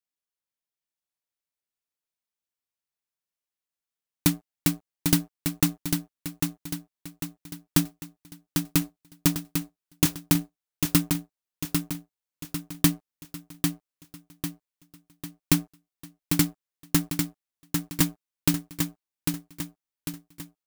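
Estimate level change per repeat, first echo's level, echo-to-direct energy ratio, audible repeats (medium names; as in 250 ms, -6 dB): -6.5 dB, -5.0 dB, -4.0 dB, 5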